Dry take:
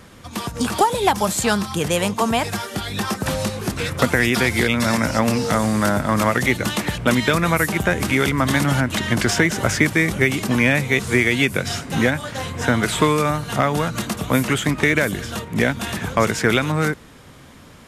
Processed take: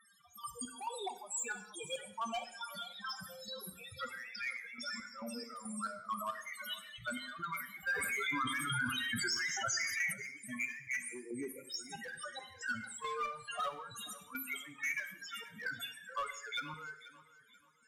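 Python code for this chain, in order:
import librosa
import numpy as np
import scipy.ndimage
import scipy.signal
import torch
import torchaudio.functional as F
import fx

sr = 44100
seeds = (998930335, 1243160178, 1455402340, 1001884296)

y = F.preemphasis(torch.from_numpy(x), 0.97).numpy()
y = fx.spec_box(y, sr, start_s=11.08, length_s=0.62, low_hz=1400.0, high_hz=7300.0, gain_db=-25)
y = fx.high_shelf(y, sr, hz=2000.0, db=-5.0)
y = fx.rider(y, sr, range_db=4, speed_s=0.5)
y = fx.spec_topn(y, sr, count=4)
y = np.clip(y, -10.0 ** (-37.5 / 20.0), 10.0 ** (-37.5 / 20.0))
y = fx.chopper(y, sr, hz=2.3, depth_pct=65, duty_pct=50)
y = fx.echo_thinned(y, sr, ms=485, feedback_pct=37, hz=160.0, wet_db=-17)
y = fx.rev_gated(y, sr, seeds[0], gate_ms=250, shape='falling', drr_db=9.0)
y = fx.env_flatten(y, sr, amount_pct=70, at=(7.91, 10.12), fade=0.02)
y = y * librosa.db_to_amplitude(5.0)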